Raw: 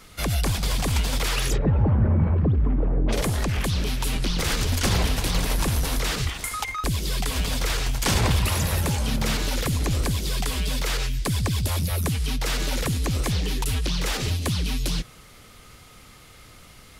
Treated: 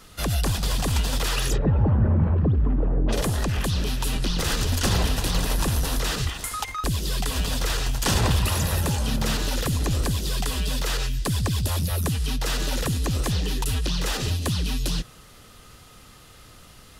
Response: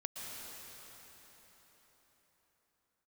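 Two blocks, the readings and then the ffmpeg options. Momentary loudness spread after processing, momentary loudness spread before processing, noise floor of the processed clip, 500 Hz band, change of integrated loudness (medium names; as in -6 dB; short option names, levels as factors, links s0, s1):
5 LU, 5 LU, -49 dBFS, 0.0 dB, 0.0 dB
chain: -af "bandreject=f=2200:w=7.5"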